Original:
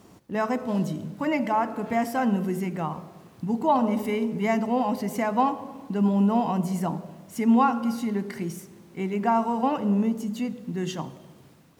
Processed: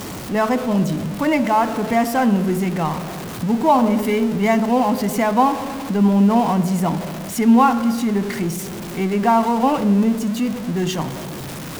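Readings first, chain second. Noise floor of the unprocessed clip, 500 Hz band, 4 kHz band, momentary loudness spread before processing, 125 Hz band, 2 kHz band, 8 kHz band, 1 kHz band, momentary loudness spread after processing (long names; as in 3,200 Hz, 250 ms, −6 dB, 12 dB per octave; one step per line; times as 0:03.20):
−53 dBFS, +7.5 dB, +11.0 dB, 12 LU, +8.0 dB, +8.0 dB, +12.5 dB, +7.0 dB, 10 LU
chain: converter with a step at zero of −31.5 dBFS
level +6 dB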